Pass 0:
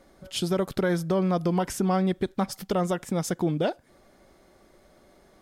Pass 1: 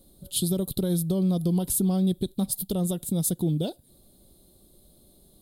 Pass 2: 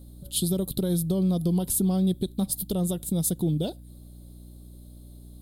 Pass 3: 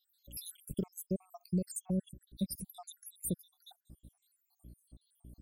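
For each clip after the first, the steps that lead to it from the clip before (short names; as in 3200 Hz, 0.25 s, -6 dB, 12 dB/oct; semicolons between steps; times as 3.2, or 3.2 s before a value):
EQ curve 150 Hz 0 dB, 500 Hz -10 dB, 2000 Hz -28 dB, 3900 Hz +3 dB, 5700 Hz -12 dB, 10000 Hz +11 dB; gain +4 dB
hum 60 Hz, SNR 18 dB
random spectral dropouts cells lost 81%; gain -6 dB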